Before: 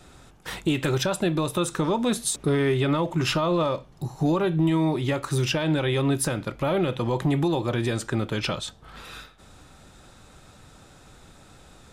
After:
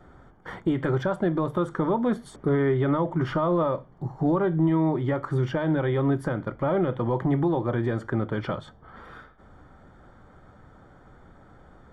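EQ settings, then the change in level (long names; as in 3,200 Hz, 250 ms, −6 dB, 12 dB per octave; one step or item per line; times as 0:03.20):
Savitzky-Golay smoothing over 41 samples
mains-hum notches 50/100/150 Hz
0.0 dB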